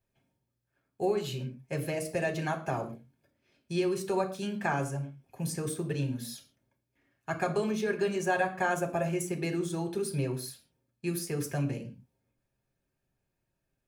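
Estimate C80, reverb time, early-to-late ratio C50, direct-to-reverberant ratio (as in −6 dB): 16.5 dB, non-exponential decay, 13.0 dB, 3.0 dB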